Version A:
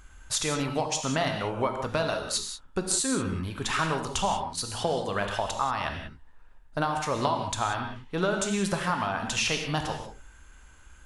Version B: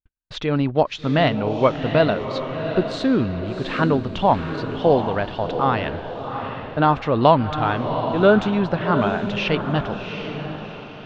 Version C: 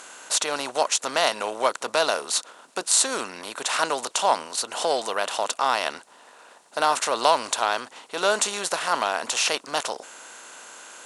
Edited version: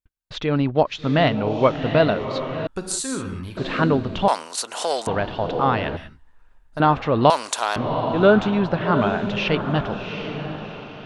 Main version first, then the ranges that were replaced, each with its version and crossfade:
B
0:02.67–0:03.57: punch in from A
0:04.28–0:05.07: punch in from C
0:05.97–0:06.80: punch in from A
0:07.30–0:07.76: punch in from C

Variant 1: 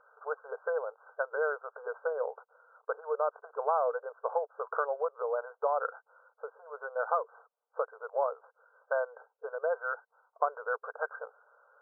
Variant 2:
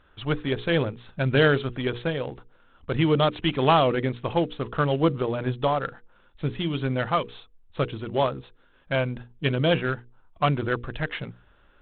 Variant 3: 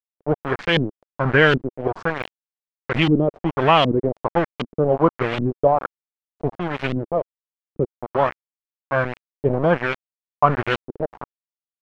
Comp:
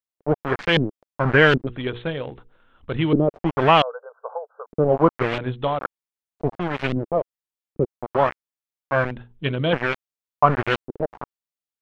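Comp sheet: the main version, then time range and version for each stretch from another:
3
0:01.67–0:03.13: punch in from 2
0:03.82–0:04.66: punch in from 1
0:05.38–0:05.79: punch in from 2
0:09.11–0:09.73: punch in from 2

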